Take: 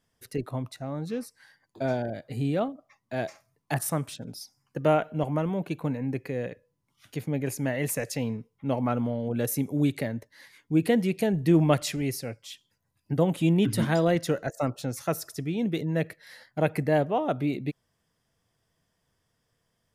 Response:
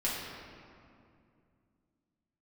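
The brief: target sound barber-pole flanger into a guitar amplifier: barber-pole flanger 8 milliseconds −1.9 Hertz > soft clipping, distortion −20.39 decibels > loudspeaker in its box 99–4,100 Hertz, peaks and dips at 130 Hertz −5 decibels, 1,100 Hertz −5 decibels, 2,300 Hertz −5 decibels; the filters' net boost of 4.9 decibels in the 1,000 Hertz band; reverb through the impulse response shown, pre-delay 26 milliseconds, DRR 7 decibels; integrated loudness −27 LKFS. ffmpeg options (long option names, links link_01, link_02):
-filter_complex "[0:a]equalizer=frequency=1000:width_type=o:gain=9,asplit=2[link_01][link_02];[1:a]atrim=start_sample=2205,adelay=26[link_03];[link_02][link_03]afir=irnorm=-1:irlink=0,volume=-14dB[link_04];[link_01][link_04]amix=inputs=2:normalize=0,asplit=2[link_05][link_06];[link_06]adelay=8,afreqshift=-1.9[link_07];[link_05][link_07]amix=inputs=2:normalize=1,asoftclip=threshold=-14.5dB,highpass=99,equalizer=frequency=130:width_type=q:width=4:gain=-5,equalizer=frequency=1100:width_type=q:width=4:gain=-5,equalizer=frequency=2300:width_type=q:width=4:gain=-5,lowpass=frequency=4100:width=0.5412,lowpass=frequency=4100:width=1.3066,volume=3.5dB"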